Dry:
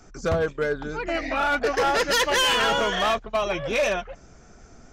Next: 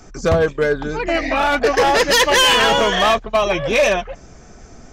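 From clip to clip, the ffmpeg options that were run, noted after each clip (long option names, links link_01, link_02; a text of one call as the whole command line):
ffmpeg -i in.wav -af "bandreject=frequency=1400:width=11,volume=8dB" out.wav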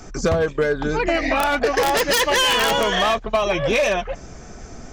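ffmpeg -i in.wav -af "aeval=exprs='(mod(2.37*val(0)+1,2)-1)/2.37':channel_layout=same,acompressor=threshold=-20dB:ratio=6,volume=3.5dB" out.wav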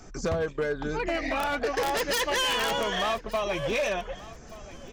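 ffmpeg -i in.wav -af "aecho=1:1:1179|2358:0.112|0.0292,volume=13.5dB,asoftclip=hard,volume=-13.5dB,volume=-8.5dB" out.wav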